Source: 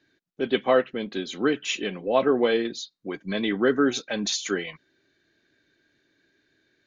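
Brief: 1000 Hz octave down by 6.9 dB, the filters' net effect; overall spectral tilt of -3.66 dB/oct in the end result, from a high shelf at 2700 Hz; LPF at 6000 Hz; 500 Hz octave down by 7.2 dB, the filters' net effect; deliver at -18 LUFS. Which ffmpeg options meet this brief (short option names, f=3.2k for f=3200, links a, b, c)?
-af "lowpass=6k,equalizer=f=500:t=o:g=-7.5,equalizer=f=1k:t=o:g=-5.5,highshelf=f=2.7k:g=-8.5,volume=12.5dB"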